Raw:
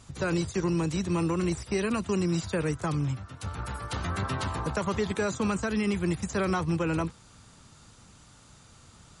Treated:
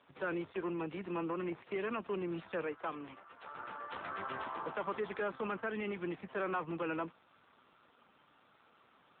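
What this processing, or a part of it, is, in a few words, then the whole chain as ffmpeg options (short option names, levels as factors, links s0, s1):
telephone: -filter_complex "[0:a]asettb=1/sr,asplit=3[s0][s1][s2];[s0]atrim=end=2.644[s3];[s1]atrim=start=2.64:end=3.53,asetpts=PTS-STARTPTS,afade=t=in:d=0.004:c=qsin,afade=t=out:st=0.886:d=0.004:c=qsin,highpass=280[s4];[s2]atrim=start=3.526[s5];[s3][s4]acrossfade=d=0.004:c1=hsin:c2=qsin[s6];[s6][s5]acrossfade=d=0.004:c1=qsin:c2=hsin,highpass=380,lowpass=3100,asoftclip=type=tanh:threshold=0.0501,volume=0.75" -ar 8000 -c:a libopencore_amrnb -b:a 7400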